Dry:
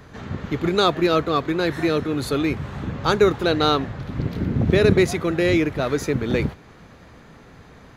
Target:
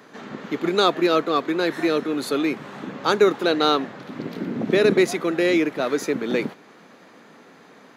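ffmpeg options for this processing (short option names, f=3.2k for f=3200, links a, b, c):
-af "highpass=f=210:w=0.5412,highpass=f=210:w=1.3066"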